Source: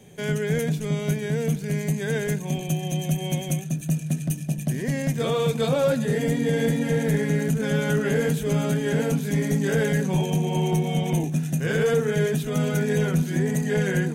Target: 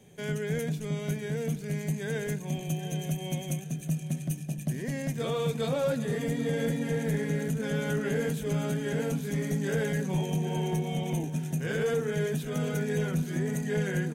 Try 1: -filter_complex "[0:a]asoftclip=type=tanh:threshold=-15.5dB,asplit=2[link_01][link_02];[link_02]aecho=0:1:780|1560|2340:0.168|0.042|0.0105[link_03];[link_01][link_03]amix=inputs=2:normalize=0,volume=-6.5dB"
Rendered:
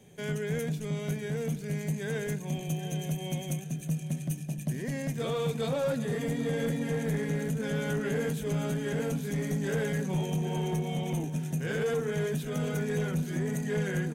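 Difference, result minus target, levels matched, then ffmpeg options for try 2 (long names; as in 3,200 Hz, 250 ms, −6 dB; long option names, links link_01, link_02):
soft clipping: distortion +16 dB
-filter_complex "[0:a]asoftclip=type=tanh:threshold=-6.5dB,asplit=2[link_01][link_02];[link_02]aecho=0:1:780|1560|2340:0.168|0.042|0.0105[link_03];[link_01][link_03]amix=inputs=2:normalize=0,volume=-6.5dB"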